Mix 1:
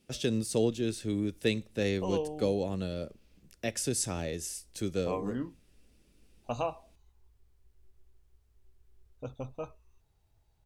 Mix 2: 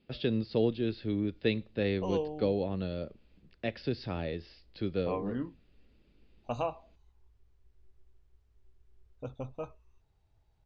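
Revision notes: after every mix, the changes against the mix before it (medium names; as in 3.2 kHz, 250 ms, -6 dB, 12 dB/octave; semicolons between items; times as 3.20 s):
speech: add steep low-pass 4.9 kHz 96 dB/octave; master: add distance through air 99 m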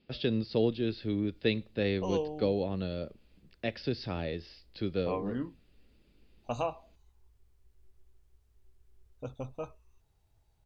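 master: remove distance through air 99 m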